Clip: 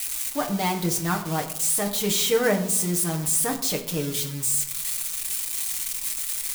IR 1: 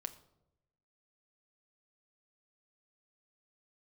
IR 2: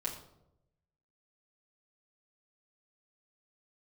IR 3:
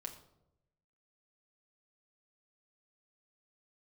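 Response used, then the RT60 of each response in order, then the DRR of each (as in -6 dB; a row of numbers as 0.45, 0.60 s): 3; 0.85, 0.85, 0.85 s; 6.5, -5.5, 0.5 dB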